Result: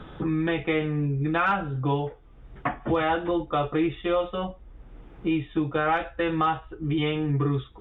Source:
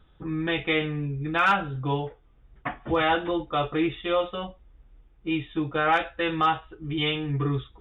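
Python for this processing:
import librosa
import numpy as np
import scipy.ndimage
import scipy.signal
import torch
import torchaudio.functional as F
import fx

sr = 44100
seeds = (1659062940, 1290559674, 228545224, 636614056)

y = fx.lowpass(x, sr, hz=1500.0, slope=6)
y = fx.band_squash(y, sr, depth_pct=70)
y = y * librosa.db_to_amplitude(1.5)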